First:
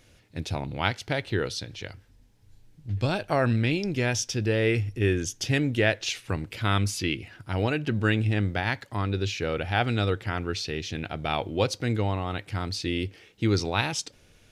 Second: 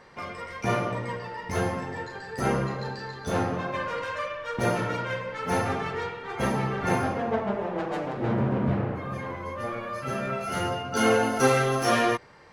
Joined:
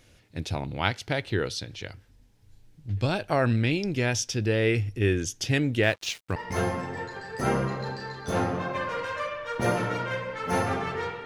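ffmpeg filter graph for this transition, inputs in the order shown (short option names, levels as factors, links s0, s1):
-filter_complex "[0:a]asettb=1/sr,asplit=3[s0][s1][s2];[s0]atrim=end=5.834[s3];[s1]atrim=start=5.83:end=6.36,asetpts=PTS-STARTPTS,afade=t=in:d=0.004:c=qsin,afade=t=out:st=0.526:d=0.004:c=qsin,aeval=exprs='sgn(val(0))*max(abs(val(0))-0.00794,0)':c=same[s4];[s2]atrim=start=6.356[s5];[s3][s4]acrossfade=d=0.004:c1=hsin:c2=qsin[s6];[s6][s5]acrossfade=d=0.004:c1=qsin:c2=hsin,apad=whole_dur=11.25,atrim=end=11.25,atrim=end=6.362[s7];[1:a]atrim=start=1.348:end=6.24[s8];[s7][s8]acrossfade=d=0.004:c1=hsin:c2=hsin"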